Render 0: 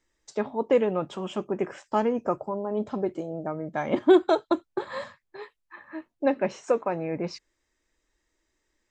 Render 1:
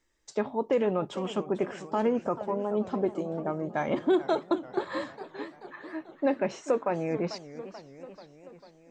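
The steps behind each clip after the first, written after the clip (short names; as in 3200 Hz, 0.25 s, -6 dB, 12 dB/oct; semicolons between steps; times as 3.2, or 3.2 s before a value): limiter -16.5 dBFS, peak gain reduction 8 dB; warbling echo 0.441 s, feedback 62%, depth 190 cents, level -14.5 dB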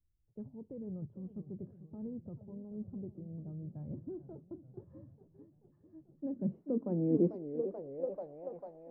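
bell 510 Hz +3.5 dB 0.68 oct; low-pass sweep 110 Hz -> 700 Hz, 5.86–8.37; gain -1.5 dB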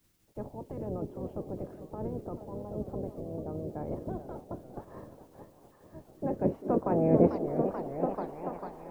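spectral limiter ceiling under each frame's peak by 27 dB; delay with a stepping band-pass 0.204 s, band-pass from 330 Hz, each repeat 0.7 oct, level -10 dB; gain +7 dB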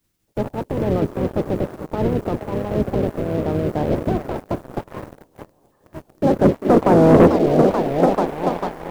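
sample leveller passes 3; gain +5 dB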